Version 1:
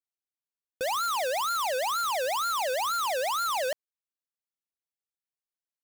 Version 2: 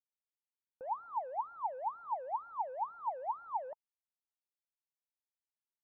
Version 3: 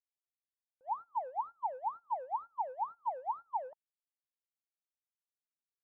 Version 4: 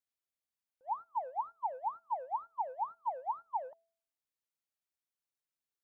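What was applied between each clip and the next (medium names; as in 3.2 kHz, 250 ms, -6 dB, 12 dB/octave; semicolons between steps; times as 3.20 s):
four-pole ladder low-pass 950 Hz, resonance 80%; trim -6 dB
gate -42 dBFS, range -23 dB; trim +1 dB
de-hum 221.1 Hz, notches 3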